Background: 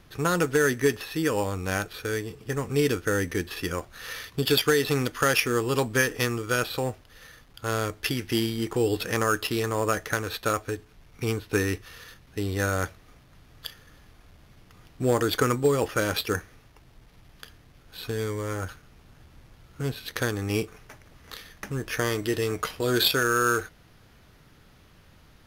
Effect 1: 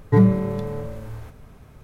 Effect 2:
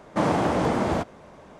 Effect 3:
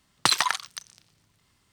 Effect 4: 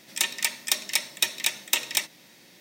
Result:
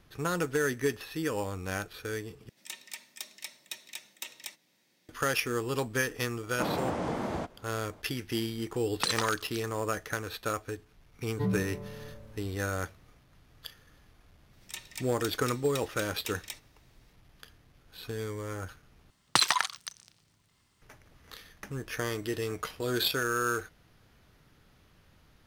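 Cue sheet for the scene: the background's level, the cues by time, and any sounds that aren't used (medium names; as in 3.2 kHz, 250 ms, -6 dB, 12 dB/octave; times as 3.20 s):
background -6.5 dB
2.49 s: replace with 4 -17 dB
6.43 s: add 2 -9.5 dB
8.78 s: add 3 -8.5 dB
11.27 s: add 1 -15.5 dB
14.53 s: add 4 -16.5 dB
19.10 s: replace with 3 -2.5 dB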